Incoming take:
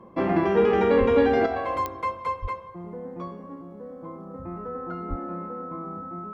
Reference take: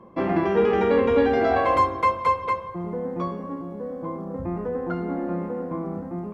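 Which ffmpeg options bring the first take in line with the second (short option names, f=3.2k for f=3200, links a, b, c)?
-filter_complex "[0:a]adeclick=t=4,bandreject=f=1.3k:w=30,asplit=3[a][b][c];[a]afade=t=out:st=0.99:d=0.02[d];[b]highpass=f=140:w=0.5412,highpass=f=140:w=1.3066,afade=t=in:st=0.99:d=0.02,afade=t=out:st=1.11:d=0.02[e];[c]afade=t=in:st=1.11:d=0.02[f];[d][e][f]amix=inputs=3:normalize=0,asplit=3[g][h][i];[g]afade=t=out:st=2.41:d=0.02[j];[h]highpass=f=140:w=0.5412,highpass=f=140:w=1.3066,afade=t=in:st=2.41:d=0.02,afade=t=out:st=2.53:d=0.02[k];[i]afade=t=in:st=2.53:d=0.02[l];[j][k][l]amix=inputs=3:normalize=0,asplit=3[m][n][o];[m]afade=t=out:st=5.09:d=0.02[p];[n]highpass=f=140:w=0.5412,highpass=f=140:w=1.3066,afade=t=in:st=5.09:d=0.02,afade=t=out:st=5.21:d=0.02[q];[o]afade=t=in:st=5.21:d=0.02[r];[p][q][r]amix=inputs=3:normalize=0,asetnsamples=n=441:p=0,asendcmd='1.46 volume volume 7.5dB',volume=0dB"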